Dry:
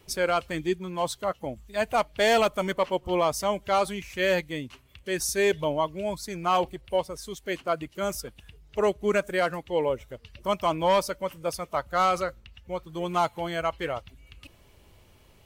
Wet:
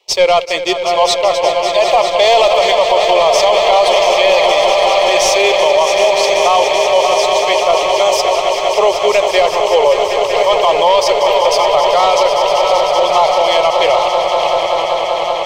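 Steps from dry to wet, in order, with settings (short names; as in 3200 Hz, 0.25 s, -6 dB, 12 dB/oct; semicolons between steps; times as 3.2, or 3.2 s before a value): regenerating reverse delay 0.619 s, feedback 64%, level -13 dB; HPF 480 Hz 12 dB/oct; tilt +3 dB/oct; notch 1800 Hz, Q 16; sample leveller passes 3; air absorption 190 m; fixed phaser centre 620 Hz, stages 4; on a send: swelling echo 0.192 s, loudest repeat 5, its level -11 dB; on the sum: maximiser +14 dB; gain -1 dB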